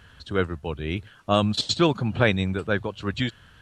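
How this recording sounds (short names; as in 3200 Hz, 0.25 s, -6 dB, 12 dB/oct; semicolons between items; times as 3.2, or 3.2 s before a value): noise floor -53 dBFS; spectral tilt -4.5 dB/oct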